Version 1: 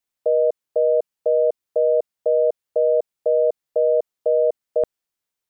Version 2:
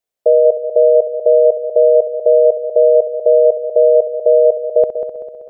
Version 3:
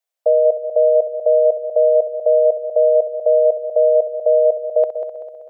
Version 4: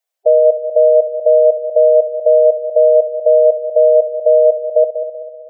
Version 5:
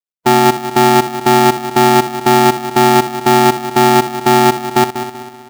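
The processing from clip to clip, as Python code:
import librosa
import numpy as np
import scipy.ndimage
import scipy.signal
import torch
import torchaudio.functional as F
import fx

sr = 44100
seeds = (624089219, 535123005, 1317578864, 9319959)

y1 = fx.band_shelf(x, sr, hz=530.0, db=9.5, octaves=1.1)
y1 = fx.echo_heads(y1, sr, ms=64, heads='first and third', feedback_pct=63, wet_db=-10.5)
y1 = y1 * librosa.db_to_amplitude(-1.0)
y2 = scipy.signal.sosfilt(scipy.signal.butter(4, 570.0, 'highpass', fs=sr, output='sos'), y1)
y3 = fx.spec_gate(y2, sr, threshold_db=-15, keep='strong')
y3 = y3 * librosa.db_to_amplitude(4.0)
y4 = fx.law_mismatch(y3, sr, coded='A')
y4 = y4 * np.sign(np.sin(2.0 * np.pi * 250.0 * np.arange(len(y4)) / sr))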